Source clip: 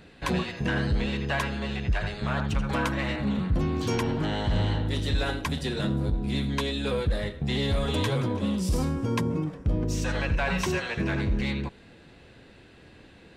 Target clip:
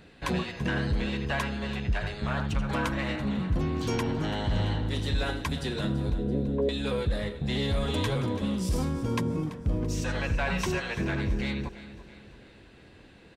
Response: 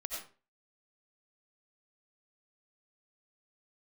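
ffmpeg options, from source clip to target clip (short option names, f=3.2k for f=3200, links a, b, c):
-filter_complex "[0:a]asettb=1/sr,asplit=3[a][b][c];[a]atrim=end=6.184[d];[b]atrim=start=6.18:end=6.69,asetpts=PTS-STARTPTS,afade=t=in:d=0.004:c=qsin,afade=t=out:st=0.506:d=0.004:c=qsin,lowpass=f=500:t=q:w=4.9[e];[c]atrim=start=6.686[f];[d][e]acrossfade=d=0.004:c1=hsin:c2=qsin[g];[g][f]acrossfade=d=0.004:c1=qsin:c2=hsin,aecho=1:1:335|670|1005|1340|1675:0.168|0.0839|0.042|0.021|0.0105,volume=-2dB"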